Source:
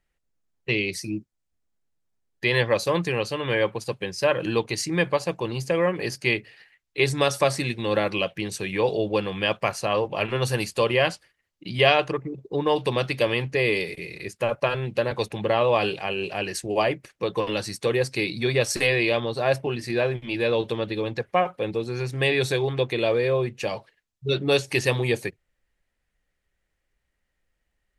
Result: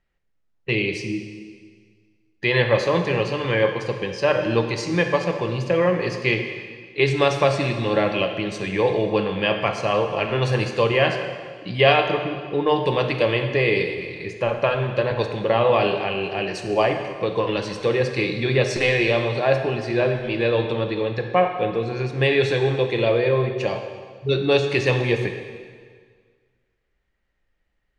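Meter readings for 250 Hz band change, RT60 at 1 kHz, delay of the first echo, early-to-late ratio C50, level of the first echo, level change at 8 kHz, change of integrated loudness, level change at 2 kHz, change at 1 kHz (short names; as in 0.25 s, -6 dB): +3.5 dB, 1.7 s, none, 6.5 dB, none, n/a, +3.0 dB, +2.5 dB, +3.5 dB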